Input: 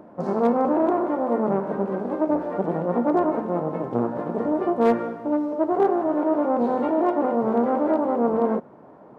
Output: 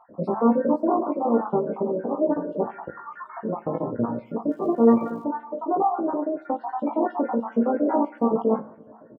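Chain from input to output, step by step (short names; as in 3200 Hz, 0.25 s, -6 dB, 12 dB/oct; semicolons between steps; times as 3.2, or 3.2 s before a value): random spectral dropouts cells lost 49%; 2.88–3.37 steep high-pass 1100 Hz 48 dB/oct; spectral gate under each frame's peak -25 dB strong; 4.5–5.23 crackle 120/s -49 dBFS; 6.1–6.8 compressor, threshold -23 dBFS, peak gain reduction 6 dB; doubler 18 ms -2 dB; reverb, pre-delay 3 ms, DRR 12 dB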